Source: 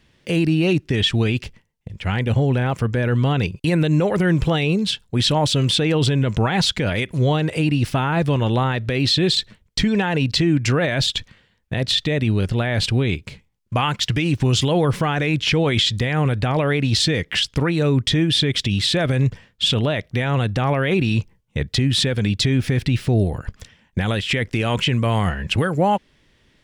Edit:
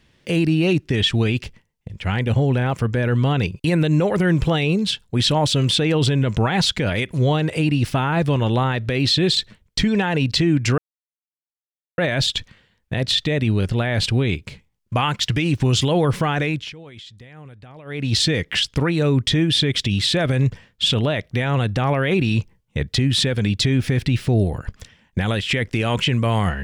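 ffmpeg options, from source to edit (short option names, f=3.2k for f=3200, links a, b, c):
-filter_complex "[0:a]asplit=4[a][b][c][d];[a]atrim=end=10.78,asetpts=PTS-STARTPTS,afade=t=out:st=10.776:d=0.004:c=hsin,apad=pad_dur=1.2[e];[b]atrim=start=10.78:end=15.53,asetpts=PTS-STARTPTS,afade=t=in:d=0.004:c=hsin,afade=t=out:st=4.44:d=0.31:silence=0.0794328[f];[c]atrim=start=15.53:end=16.65,asetpts=PTS-STARTPTS,volume=-22dB[g];[d]atrim=start=16.65,asetpts=PTS-STARTPTS,afade=t=in:d=0.31:silence=0.0794328[h];[e][f][g][h]concat=n=4:v=0:a=1"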